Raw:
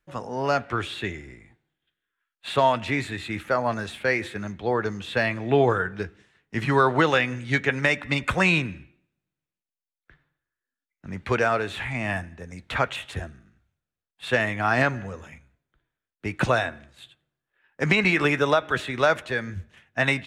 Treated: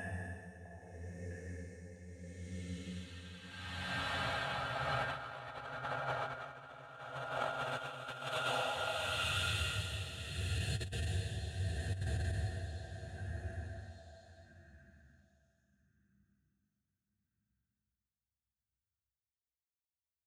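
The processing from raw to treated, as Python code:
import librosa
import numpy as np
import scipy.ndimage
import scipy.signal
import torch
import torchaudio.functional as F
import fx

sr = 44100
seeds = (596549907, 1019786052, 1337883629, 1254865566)

p1 = fx.bin_expand(x, sr, power=1.5)
p2 = scipy.signal.sosfilt(scipy.signal.butter(4, 66.0, 'highpass', fs=sr, output='sos'), p1)
p3 = fx.paulstretch(p2, sr, seeds[0], factor=13.0, window_s=0.5, from_s=12.31)
p4 = p3 * (1.0 - 0.63 / 2.0 + 0.63 / 2.0 * np.cos(2.0 * np.pi * 0.74 * (np.arange(len(p3)) / sr)))
p5 = p4 + fx.echo_stepped(p4, sr, ms=654, hz=710.0, octaves=1.4, feedback_pct=70, wet_db=-7, dry=0)
p6 = fx.over_compress(p5, sr, threshold_db=-39.0, ratio=-0.5)
y = p6 * 10.0 ** (1.5 / 20.0)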